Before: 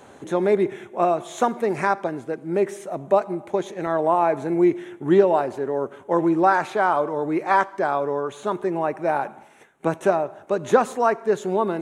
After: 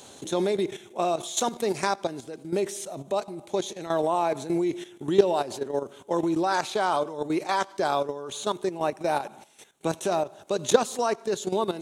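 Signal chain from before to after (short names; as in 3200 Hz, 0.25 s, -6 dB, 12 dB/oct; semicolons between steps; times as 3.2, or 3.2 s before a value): resonant high shelf 2700 Hz +12.5 dB, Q 1.5; level quantiser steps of 12 dB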